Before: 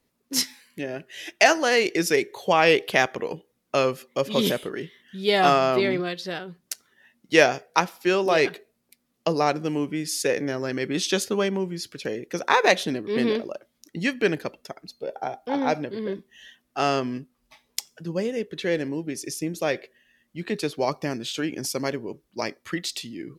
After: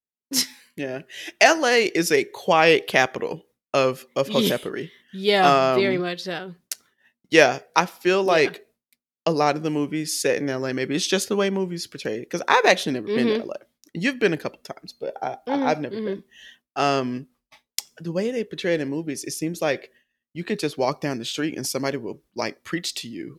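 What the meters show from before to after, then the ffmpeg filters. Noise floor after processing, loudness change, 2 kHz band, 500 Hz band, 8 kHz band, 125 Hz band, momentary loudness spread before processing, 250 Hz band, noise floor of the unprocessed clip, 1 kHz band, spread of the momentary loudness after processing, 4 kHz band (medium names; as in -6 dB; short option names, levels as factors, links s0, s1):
under -85 dBFS, +2.0 dB, +2.0 dB, +2.0 dB, +2.0 dB, +2.0 dB, 17 LU, +2.0 dB, -73 dBFS, +2.0 dB, 17 LU, +2.0 dB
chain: -af "agate=range=0.0224:threshold=0.00316:ratio=3:detection=peak,volume=1.26"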